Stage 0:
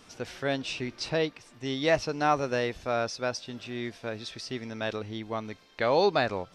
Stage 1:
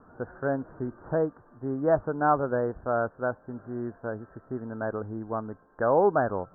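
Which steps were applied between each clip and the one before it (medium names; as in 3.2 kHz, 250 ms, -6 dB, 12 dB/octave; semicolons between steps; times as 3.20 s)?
steep low-pass 1.6 kHz 96 dB/octave; trim +2 dB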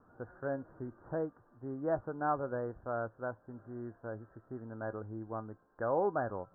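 feedback comb 110 Hz, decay 0.15 s, harmonics odd, mix 50%; trim -5 dB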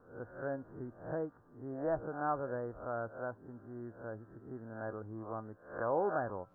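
reverse spectral sustain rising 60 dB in 0.47 s; trim -2.5 dB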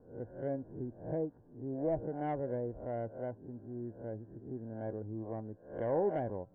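self-modulated delay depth 0.16 ms; boxcar filter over 35 samples; trim +4.5 dB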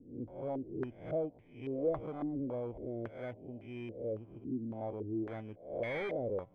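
bit-reversed sample order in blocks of 16 samples; saturation -34.5 dBFS, distortion -10 dB; step-sequenced low-pass 3.6 Hz 280–2100 Hz; trim -1 dB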